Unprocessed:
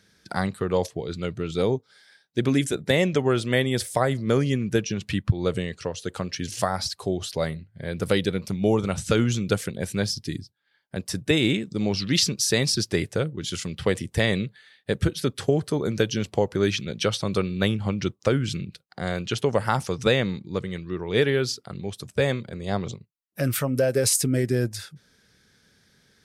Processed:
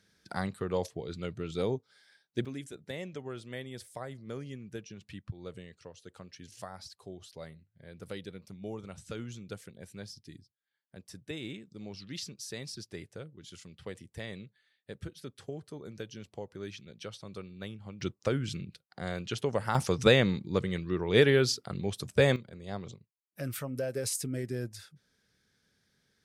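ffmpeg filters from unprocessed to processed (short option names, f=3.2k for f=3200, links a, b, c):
-af "asetnsamples=n=441:p=0,asendcmd='2.45 volume volume -19dB;18.01 volume volume -8dB;19.75 volume volume -1dB;22.36 volume volume -12dB',volume=-8dB"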